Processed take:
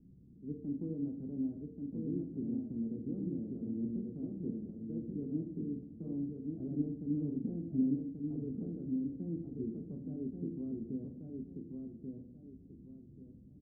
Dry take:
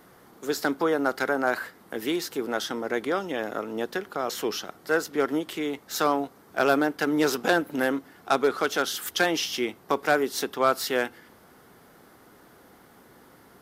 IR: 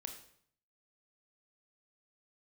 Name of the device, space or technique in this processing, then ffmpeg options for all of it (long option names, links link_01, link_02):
club heard from the street: -filter_complex "[0:a]alimiter=limit=-16dB:level=0:latency=1:release=74,lowpass=frequency=210:width=0.5412,lowpass=frequency=210:width=1.3066[link_01];[1:a]atrim=start_sample=2205[link_02];[link_01][link_02]afir=irnorm=-1:irlink=0,aecho=1:1:1135|2270|3405|4540:0.631|0.189|0.0568|0.017,volume=7dB"